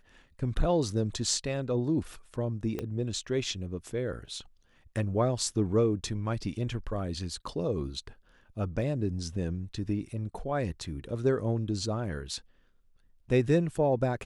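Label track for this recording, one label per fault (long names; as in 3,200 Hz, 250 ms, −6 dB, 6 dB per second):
2.790000	2.790000	click −20 dBFS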